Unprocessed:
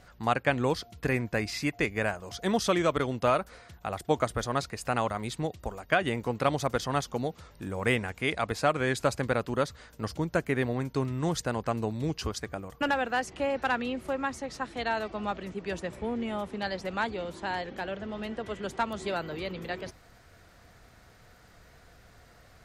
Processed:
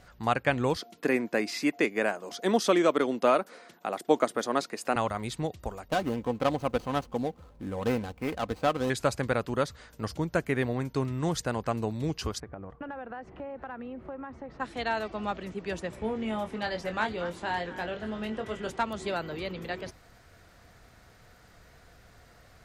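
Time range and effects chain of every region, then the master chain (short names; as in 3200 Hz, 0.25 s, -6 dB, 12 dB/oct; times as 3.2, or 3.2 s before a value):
0.77–4.96 HPF 250 Hz 24 dB/oct + low shelf 370 Hz +9 dB
5.88–8.9 median filter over 25 samples + comb 3.9 ms, depth 36%
12.4–14.6 LPF 1400 Hz + compressor, threshold -36 dBFS
15.99–18.72 notch 4300 Hz, Q 21 + doubler 23 ms -6.5 dB + delay with a stepping band-pass 0.231 s, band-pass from 1400 Hz, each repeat 1.4 oct, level -10.5 dB
whole clip: dry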